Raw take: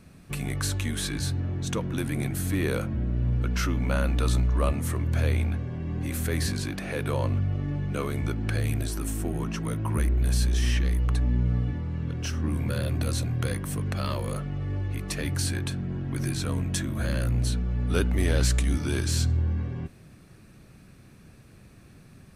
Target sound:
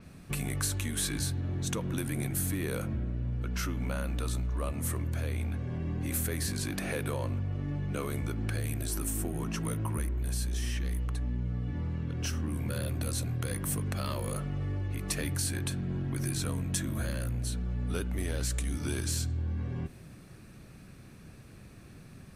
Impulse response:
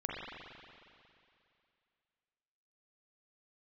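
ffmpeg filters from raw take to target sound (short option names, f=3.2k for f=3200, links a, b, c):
-filter_complex "[0:a]acompressor=threshold=-30dB:ratio=6,asplit=2[a][b];[1:a]atrim=start_sample=2205[c];[b][c]afir=irnorm=-1:irlink=0,volume=-20.5dB[d];[a][d]amix=inputs=2:normalize=0,adynamicequalizer=threshold=0.00158:dfrequency=6800:dqfactor=0.7:tfrequency=6800:tqfactor=0.7:attack=5:release=100:ratio=0.375:range=4:mode=boostabove:tftype=highshelf"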